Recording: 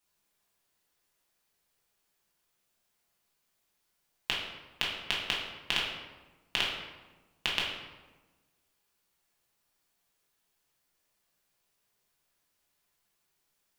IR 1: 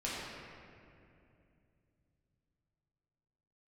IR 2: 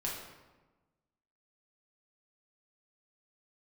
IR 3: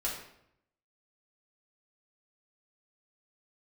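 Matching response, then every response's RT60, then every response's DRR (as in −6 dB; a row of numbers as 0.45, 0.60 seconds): 2; 2.6, 1.2, 0.75 seconds; −8.5, −5.0, −5.5 decibels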